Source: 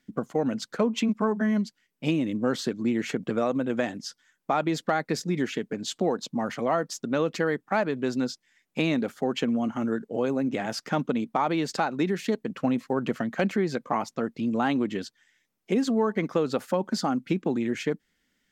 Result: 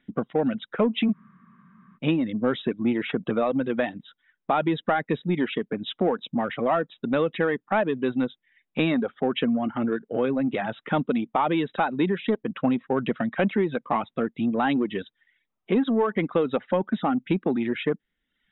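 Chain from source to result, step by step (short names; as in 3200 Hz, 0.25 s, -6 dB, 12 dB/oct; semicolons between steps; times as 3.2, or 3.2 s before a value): reverb removal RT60 0.67 s; in parallel at -4 dB: soft clip -24.5 dBFS, distortion -10 dB; on the sum: brick-wall FIR low-pass 3900 Hz; spectral freeze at 1.15, 0.81 s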